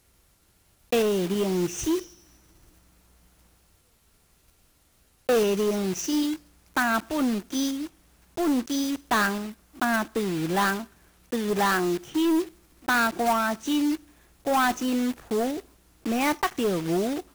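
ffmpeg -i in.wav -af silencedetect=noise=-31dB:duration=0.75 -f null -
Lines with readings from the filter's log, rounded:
silence_start: 0.00
silence_end: 0.92 | silence_duration: 0.92
silence_start: 2.02
silence_end: 5.29 | silence_duration: 3.27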